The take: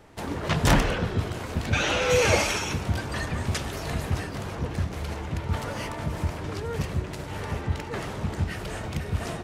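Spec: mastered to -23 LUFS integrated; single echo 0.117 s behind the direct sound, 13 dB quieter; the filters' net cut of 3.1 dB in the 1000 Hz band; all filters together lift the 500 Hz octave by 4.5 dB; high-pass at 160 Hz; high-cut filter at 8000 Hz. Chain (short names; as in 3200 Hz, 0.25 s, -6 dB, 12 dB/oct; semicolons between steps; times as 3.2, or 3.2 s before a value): HPF 160 Hz; LPF 8000 Hz; bell 500 Hz +6.5 dB; bell 1000 Hz -6.5 dB; echo 0.117 s -13 dB; gain +5 dB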